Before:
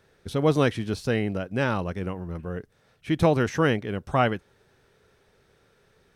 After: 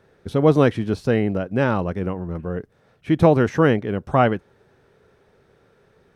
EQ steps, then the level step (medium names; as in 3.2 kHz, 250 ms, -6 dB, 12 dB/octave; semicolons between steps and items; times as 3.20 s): bass shelf 64 Hz -9 dB; treble shelf 2 kHz -11.5 dB; +7.0 dB